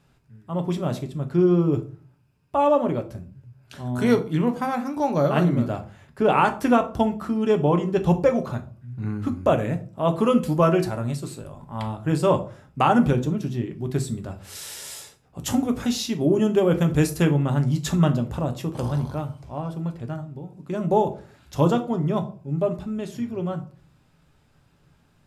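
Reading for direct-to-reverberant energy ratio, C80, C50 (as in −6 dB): 6.0 dB, 20.0 dB, 15.0 dB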